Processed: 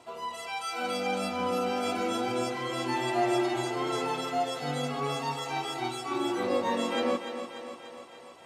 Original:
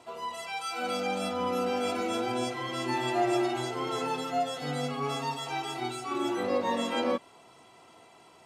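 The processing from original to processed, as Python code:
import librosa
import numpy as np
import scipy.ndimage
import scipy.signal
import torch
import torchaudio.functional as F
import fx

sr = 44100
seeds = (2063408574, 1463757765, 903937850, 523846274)

y = fx.echo_thinned(x, sr, ms=292, feedback_pct=64, hz=180.0, wet_db=-9.0)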